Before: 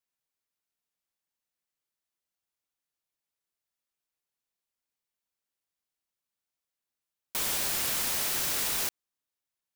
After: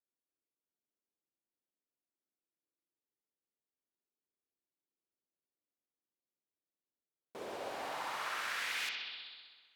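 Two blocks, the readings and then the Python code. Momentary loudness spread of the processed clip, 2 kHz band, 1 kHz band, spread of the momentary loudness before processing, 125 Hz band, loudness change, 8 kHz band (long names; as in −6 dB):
14 LU, −1.5 dB, 0.0 dB, 5 LU, −17.5 dB, −11.5 dB, −20.0 dB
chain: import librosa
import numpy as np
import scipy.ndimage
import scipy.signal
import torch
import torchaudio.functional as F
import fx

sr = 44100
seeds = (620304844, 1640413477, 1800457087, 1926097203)

y = fx.echo_bbd(x, sr, ms=64, stages=2048, feedback_pct=83, wet_db=-5.0)
y = fx.filter_sweep_bandpass(y, sr, from_hz=330.0, to_hz=6300.0, start_s=7.13, end_s=9.75, q=1.8)
y = F.gain(torch.from_numpy(y), 1.0).numpy()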